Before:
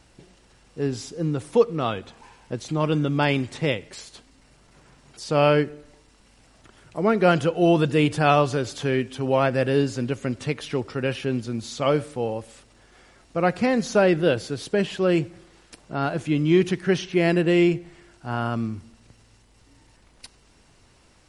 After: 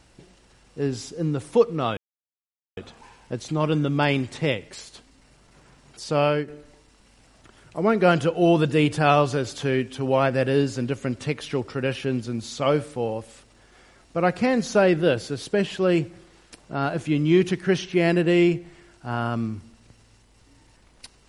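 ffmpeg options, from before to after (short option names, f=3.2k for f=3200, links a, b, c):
-filter_complex "[0:a]asplit=3[a][b][c];[a]atrim=end=1.97,asetpts=PTS-STARTPTS,afade=t=out:st=1.966:d=0.004:c=hsin,apad=pad_dur=0.8[d];[b]atrim=start=1.97:end=5.68,asetpts=PTS-STARTPTS,afade=t=in:d=0.004:c=hsin,afade=t=out:st=3.3:d=0.41:silence=0.398107[e];[c]atrim=start=5.68,asetpts=PTS-STARTPTS,afade=t=in:d=0.004:c=hsin:silence=0.398107[f];[d][e][f]concat=n=3:v=0:a=1"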